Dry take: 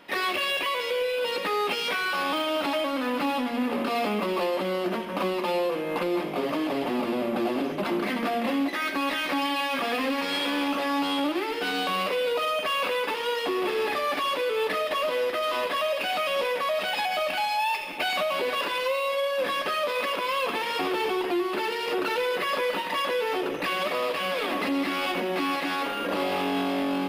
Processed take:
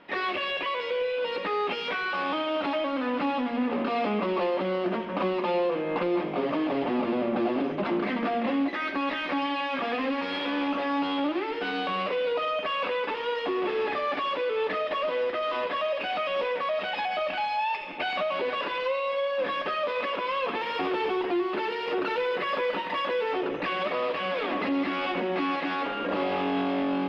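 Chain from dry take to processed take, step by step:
0:20.61–0:23.32: high-shelf EQ 11,000 Hz +9 dB
speech leveller 2 s
high-frequency loss of the air 240 metres

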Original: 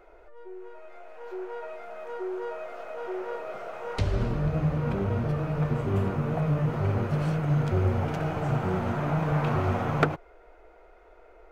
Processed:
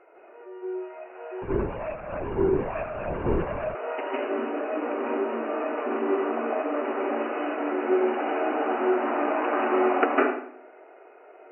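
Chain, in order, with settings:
linear-phase brick-wall band-pass 250–3,000 Hz
convolution reverb RT60 0.60 s, pre-delay 149 ms, DRR −4 dB
0:01.42–0:03.75: linear-prediction vocoder at 8 kHz whisper

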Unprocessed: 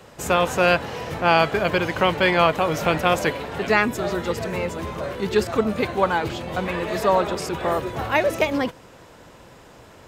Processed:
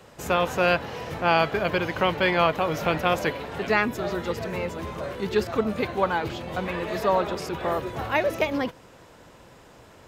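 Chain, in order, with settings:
dynamic equaliser 8,300 Hz, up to −7 dB, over −50 dBFS, Q 1.8
level −3.5 dB

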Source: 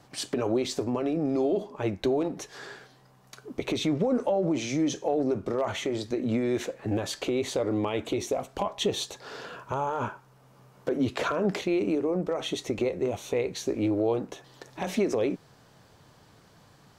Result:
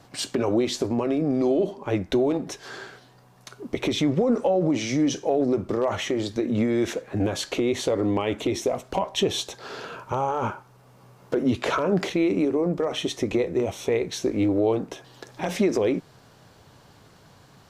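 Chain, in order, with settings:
wrong playback speed 25 fps video run at 24 fps
level +4 dB

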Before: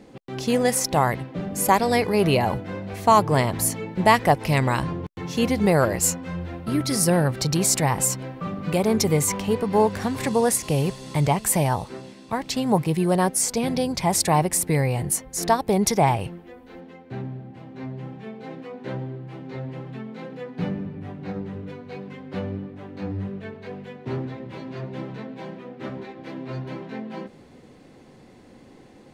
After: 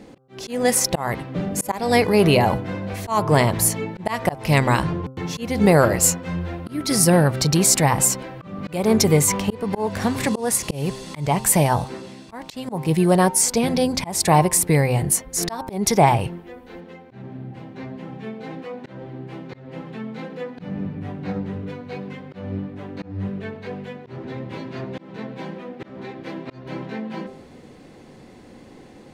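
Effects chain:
hum removal 130.9 Hz, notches 12
volume swells 247 ms
level +4.5 dB

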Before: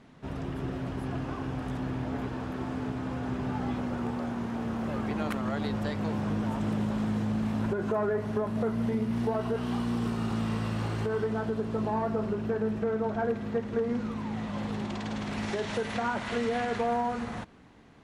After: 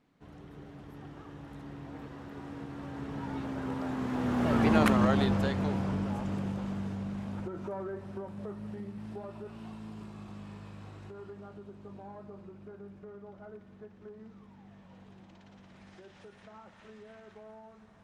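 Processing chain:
source passing by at 0:04.83, 31 m/s, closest 11 metres
level +8 dB

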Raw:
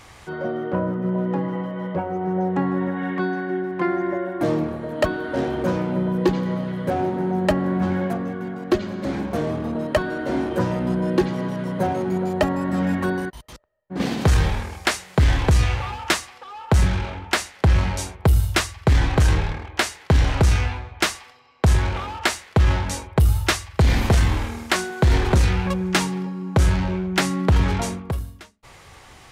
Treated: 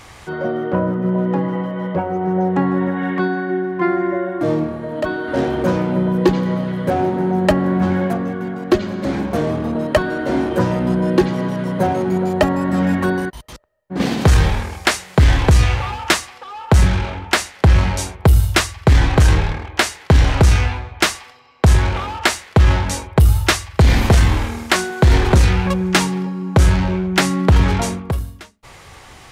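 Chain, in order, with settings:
0:03.28–0:05.28: harmonic and percussive parts rebalanced percussive −12 dB
level +5 dB

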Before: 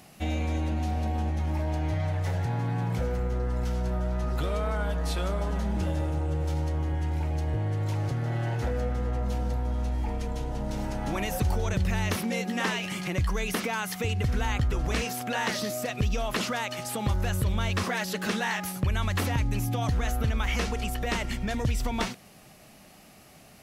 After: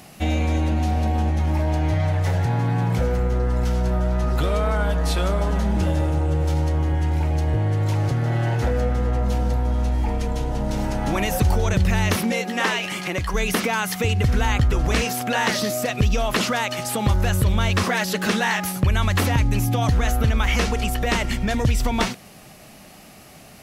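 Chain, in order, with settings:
0:12.32–0:13.34: bass and treble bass −9 dB, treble −2 dB
level +7.5 dB

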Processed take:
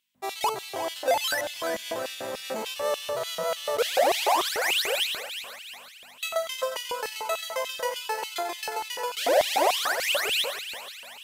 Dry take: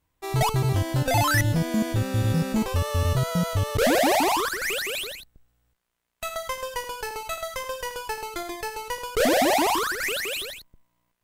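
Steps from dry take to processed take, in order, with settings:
mains hum 50 Hz, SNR 20 dB
brickwall limiter −19.5 dBFS, peak gain reduction 8 dB
echo with a time of its own for lows and highs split 720 Hz, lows 148 ms, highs 358 ms, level −10.5 dB
auto-filter high-pass square 3.4 Hz 560–3,000 Hz

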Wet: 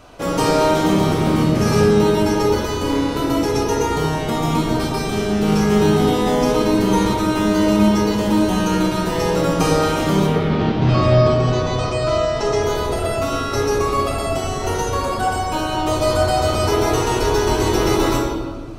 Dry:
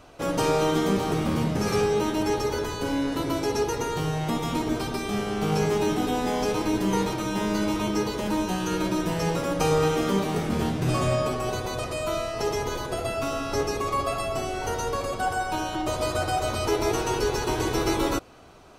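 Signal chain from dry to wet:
0:10.26–0:12.62: low-pass filter 3,800 Hz → 8,700 Hz 24 dB per octave
convolution reverb RT60 1.4 s, pre-delay 22 ms, DRR 0.5 dB
level +4.5 dB

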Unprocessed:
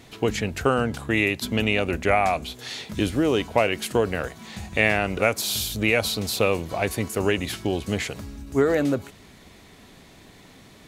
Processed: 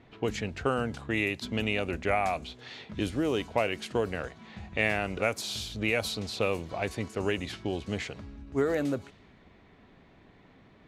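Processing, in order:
low-pass that shuts in the quiet parts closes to 2,100 Hz, open at −17 dBFS
level −7 dB

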